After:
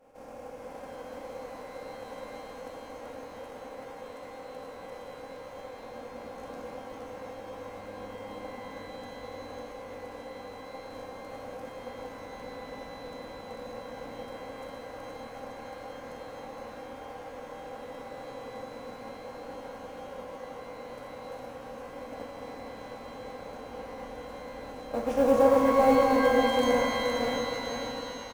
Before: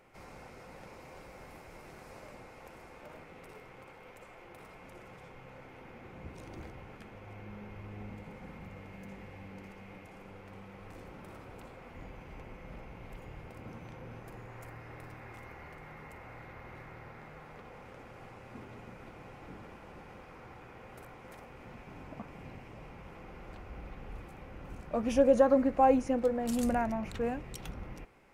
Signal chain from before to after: per-bin compression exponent 0.4; expander -19 dBFS; bell 420 Hz +6 dB 1.2 oct; in parallel at +1 dB: compressor, threshold -43 dBFS, peak gain reduction 28 dB; on the sum: short-mantissa float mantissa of 4-bit; on a send: echo 0.466 s -5.5 dB; on the sum: shimmer reverb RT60 3.2 s, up +12 st, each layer -8 dB, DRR 1 dB; gain -6.5 dB

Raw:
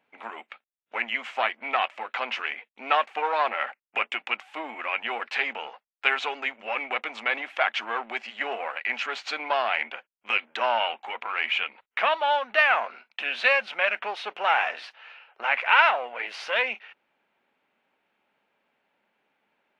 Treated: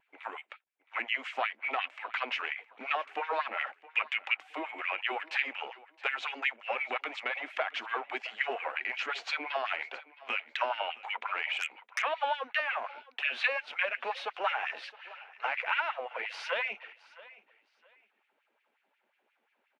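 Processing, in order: compressor 12:1, threshold -24 dBFS, peak gain reduction 12 dB; LFO high-pass sine 5.6 Hz 260–2400 Hz; vibrato 0.64 Hz 9.7 cents; on a send: feedback echo 0.666 s, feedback 25%, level -20 dB; 11.53–12.02 on the sum: core saturation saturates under 4000 Hz; gain -5.5 dB

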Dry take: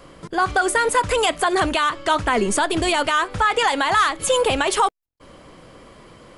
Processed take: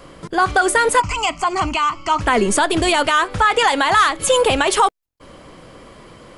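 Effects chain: 1–2.21 fixed phaser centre 2500 Hz, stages 8; gain +3.5 dB

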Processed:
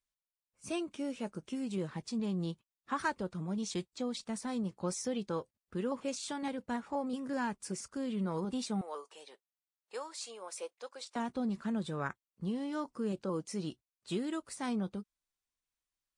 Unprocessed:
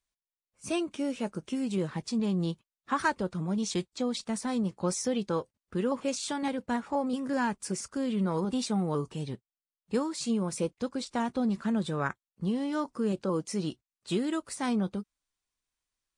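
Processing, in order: 8.81–11.16 HPF 520 Hz 24 dB/oct; gain -6 dB

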